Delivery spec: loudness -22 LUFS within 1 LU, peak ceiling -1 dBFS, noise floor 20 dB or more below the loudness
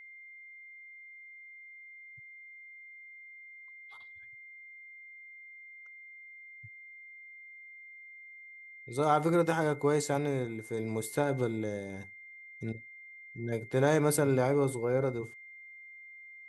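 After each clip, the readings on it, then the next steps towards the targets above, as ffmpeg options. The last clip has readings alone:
steady tone 2.1 kHz; tone level -48 dBFS; loudness -31.0 LUFS; peak level -13.0 dBFS; loudness target -22.0 LUFS
-> -af "bandreject=f=2100:w=30"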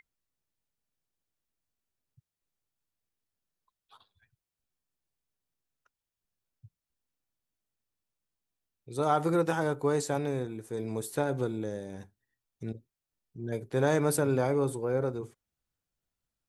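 steady tone not found; loudness -30.5 LUFS; peak level -13.0 dBFS; loudness target -22.0 LUFS
-> -af "volume=2.66"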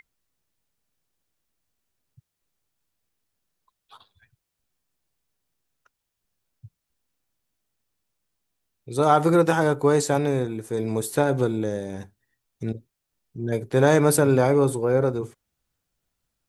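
loudness -22.0 LUFS; peak level -4.5 dBFS; noise floor -82 dBFS

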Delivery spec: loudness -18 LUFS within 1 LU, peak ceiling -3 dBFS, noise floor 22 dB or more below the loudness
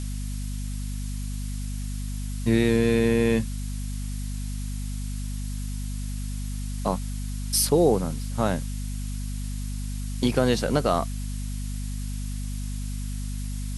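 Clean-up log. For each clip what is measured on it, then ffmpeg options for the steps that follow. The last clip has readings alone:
hum 50 Hz; highest harmonic 250 Hz; hum level -28 dBFS; noise floor -31 dBFS; noise floor target -50 dBFS; loudness -28.0 LUFS; peak level -7.5 dBFS; loudness target -18.0 LUFS
-> -af "bandreject=f=50:t=h:w=6,bandreject=f=100:t=h:w=6,bandreject=f=150:t=h:w=6,bandreject=f=200:t=h:w=6,bandreject=f=250:t=h:w=6"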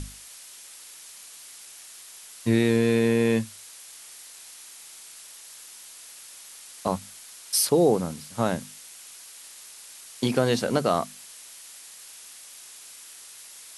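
hum not found; noise floor -46 dBFS; noise floor target -47 dBFS
-> -af "afftdn=nr=6:nf=-46"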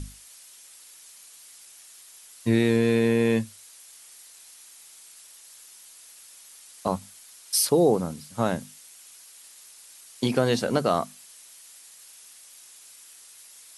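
noise floor -50 dBFS; loudness -24.5 LUFS; peak level -8.5 dBFS; loudness target -18.0 LUFS
-> -af "volume=2.11,alimiter=limit=0.708:level=0:latency=1"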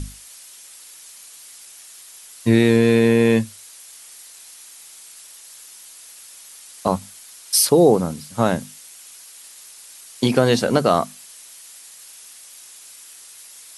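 loudness -18.0 LUFS; peak level -3.0 dBFS; noise floor -44 dBFS

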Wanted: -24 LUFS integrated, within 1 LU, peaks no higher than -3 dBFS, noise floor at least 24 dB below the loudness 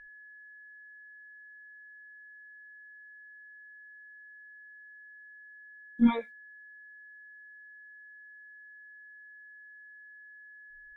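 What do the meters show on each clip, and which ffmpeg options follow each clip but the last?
steady tone 1.7 kHz; tone level -49 dBFS; loudness -29.0 LUFS; peak level -12.5 dBFS; loudness target -24.0 LUFS
-> -af "bandreject=f=1700:w=30"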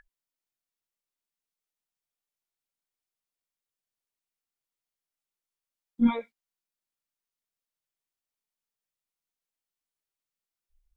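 steady tone not found; loudness -27.5 LUFS; peak level -12.5 dBFS; loudness target -24.0 LUFS
-> -af "volume=1.5"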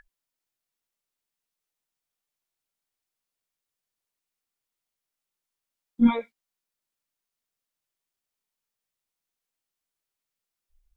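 loudness -24.0 LUFS; peak level -9.0 dBFS; noise floor -88 dBFS

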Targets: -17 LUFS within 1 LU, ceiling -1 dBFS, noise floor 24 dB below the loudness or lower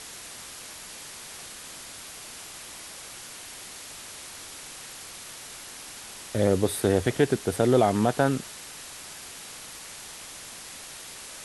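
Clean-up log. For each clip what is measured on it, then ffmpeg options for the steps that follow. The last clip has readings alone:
noise floor -43 dBFS; noise floor target -55 dBFS; loudness -30.5 LUFS; peak level -7.5 dBFS; loudness target -17.0 LUFS
-> -af "afftdn=nr=12:nf=-43"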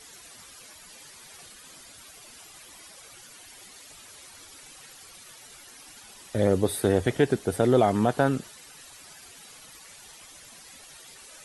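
noise floor -49 dBFS; loudness -24.5 LUFS; peak level -7.5 dBFS; loudness target -17.0 LUFS
-> -af "volume=2.37,alimiter=limit=0.891:level=0:latency=1"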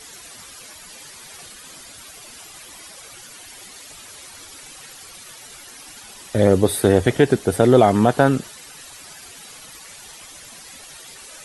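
loudness -17.0 LUFS; peak level -1.0 dBFS; noise floor -42 dBFS

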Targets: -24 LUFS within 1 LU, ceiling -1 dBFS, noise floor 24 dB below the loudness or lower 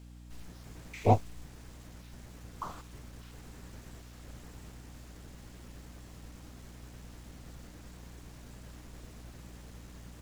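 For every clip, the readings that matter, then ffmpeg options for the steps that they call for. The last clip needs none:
hum 60 Hz; highest harmonic 300 Hz; hum level -48 dBFS; loudness -41.0 LUFS; peak level -10.5 dBFS; loudness target -24.0 LUFS
-> -af "bandreject=f=60:t=h:w=4,bandreject=f=120:t=h:w=4,bandreject=f=180:t=h:w=4,bandreject=f=240:t=h:w=4,bandreject=f=300:t=h:w=4"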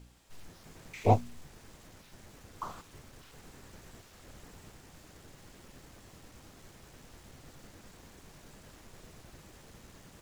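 hum not found; loudness -32.5 LUFS; peak level -10.5 dBFS; loudness target -24.0 LUFS
-> -af "volume=2.66"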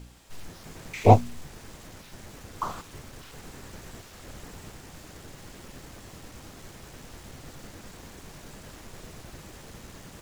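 loudness -24.0 LUFS; peak level -2.0 dBFS; noise floor -48 dBFS

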